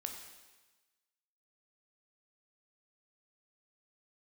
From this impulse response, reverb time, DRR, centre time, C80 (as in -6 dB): 1.2 s, 3.0 dB, 35 ms, 7.0 dB